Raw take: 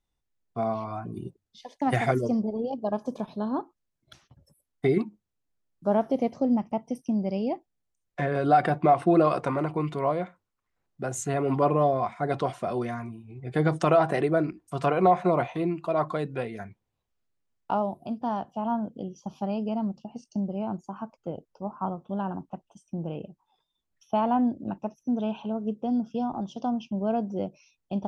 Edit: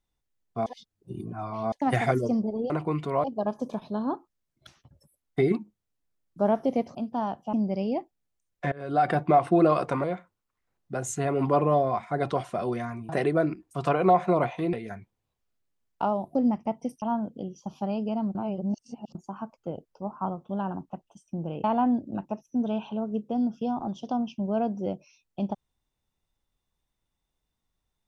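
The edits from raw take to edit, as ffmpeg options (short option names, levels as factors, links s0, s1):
-filter_complex "[0:a]asplit=16[s0][s1][s2][s3][s4][s5][s6][s7][s8][s9][s10][s11][s12][s13][s14][s15];[s0]atrim=end=0.662[s16];[s1]atrim=start=0.658:end=1.722,asetpts=PTS-STARTPTS,areverse[s17];[s2]atrim=start=1.718:end=2.702[s18];[s3]atrim=start=9.588:end=10.132[s19];[s4]atrim=start=2.698:end=6.412[s20];[s5]atrim=start=18.038:end=18.622[s21];[s6]atrim=start=7.078:end=8.27,asetpts=PTS-STARTPTS,afade=t=out:st=1.188:d=0.004:c=hsin:silence=0.0749894[s22];[s7]atrim=start=8.27:end=9.592,asetpts=PTS-STARTPTS,afade=t=in:d=0.42:silence=0.0749894[s23];[s8]atrim=start=10.128:end=13.182[s24];[s9]atrim=start=14.058:end=15.702[s25];[s10]atrim=start=16.418:end=18.042[s26];[s11]atrim=start=6.408:end=7.082[s27];[s12]atrim=start=18.618:end=19.952[s28];[s13]atrim=start=19.948:end=20.752,asetpts=PTS-STARTPTS,areverse[s29];[s14]atrim=start=20.748:end=23.242[s30];[s15]atrim=start=24.168[s31];[s16][s17]acrossfade=d=0.004:c1=hsin:c2=hsin[s32];[s32][s18]acrossfade=d=0.004:c1=hsin:c2=hsin[s33];[s33][s19]acrossfade=d=0.004:c1=hsin:c2=hsin[s34];[s34][s20]acrossfade=d=0.004:c1=hsin:c2=hsin[s35];[s35][s21]acrossfade=d=0.004:c1=hsin:c2=hsin[s36];[s22][s23]concat=n=2:v=0:a=1[s37];[s36][s37]acrossfade=d=0.004:c1=hsin:c2=hsin[s38];[s38][s24]acrossfade=d=0.004:c1=hsin:c2=hsin[s39];[s39][s25]acrossfade=d=0.004:c1=hsin:c2=hsin[s40];[s40][s26]acrossfade=d=0.004:c1=hsin:c2=hsin[s41];[s41][s27]acrossfade=d=0.004:c1=hsin:c2=hsin[s42];[s42][s28]acrossfade=d=0.004:c1=hsin:c2=hsin[s43];[s43][s29]acrossfade=d=0.004:c1=hsin:c2=hsin[s44];[s44][s30]acrossfade=d=0.004:c1=hsin:c2=hsin[s45];[s45][s31]acrossfade=d=0.004:c1=hsin:c2=hsin"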